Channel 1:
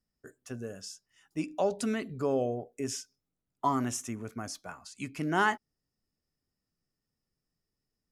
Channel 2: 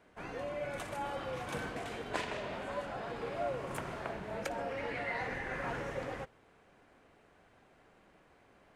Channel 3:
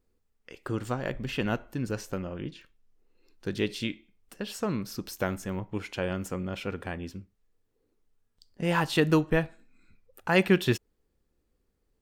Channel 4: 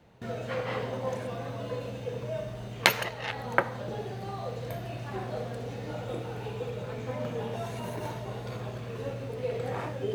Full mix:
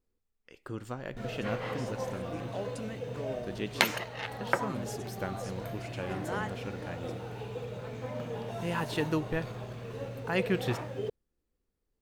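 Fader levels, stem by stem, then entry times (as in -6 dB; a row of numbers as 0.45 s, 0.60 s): -10.5 dB, -16.5 dB, -7.5 dB, -3.5 dB; 0.95 s, 1.00 s, 0.00 s, 0.95 s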